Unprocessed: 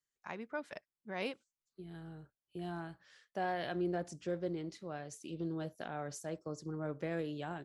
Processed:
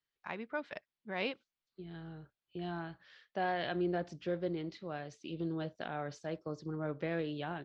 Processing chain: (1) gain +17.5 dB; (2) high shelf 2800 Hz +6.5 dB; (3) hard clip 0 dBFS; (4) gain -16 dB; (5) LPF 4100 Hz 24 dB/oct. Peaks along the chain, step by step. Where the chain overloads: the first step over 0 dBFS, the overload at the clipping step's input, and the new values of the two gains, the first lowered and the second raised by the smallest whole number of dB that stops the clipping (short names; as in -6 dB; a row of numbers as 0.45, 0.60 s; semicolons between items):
-7.0, -5.5, -5.5, -21.5, -22.0 dBFS; no overload